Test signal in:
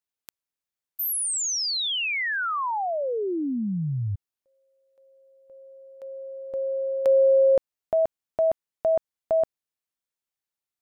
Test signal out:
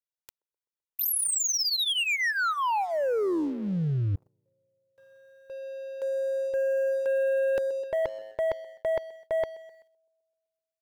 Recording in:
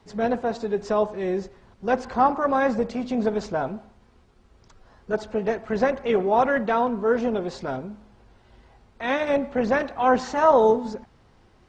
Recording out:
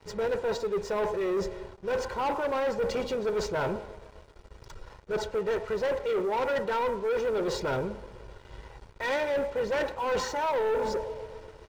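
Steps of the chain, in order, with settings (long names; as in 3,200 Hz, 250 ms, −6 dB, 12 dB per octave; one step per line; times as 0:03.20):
comb filter 2.1 ms, depth 77%
delay with a band-pass on its return 128 ms, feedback 65%, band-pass 440 Hz, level −22 dB
reversed playback
downward compressor 5 to 1, threshold −27 dBFS
reversed playback
leveller curve on the samples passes 3
level −6.5 dB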